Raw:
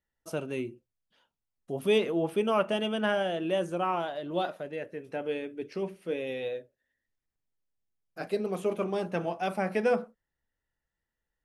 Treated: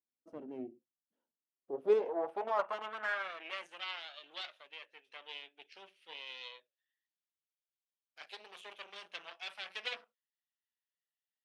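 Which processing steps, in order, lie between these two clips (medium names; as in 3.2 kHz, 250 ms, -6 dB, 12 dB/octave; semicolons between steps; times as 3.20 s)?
Chebyshev shaper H 8 -14 dB, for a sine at -13 dBFS; tone controls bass -10 dB, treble +1 dB; in parallel at -2.5 dB: level held to a coarse grid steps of 22 dB; on the sum: band-pass sweep 260 Hz -> 3.2 kHz, 1.30–3.86 s; trim -3.5 dB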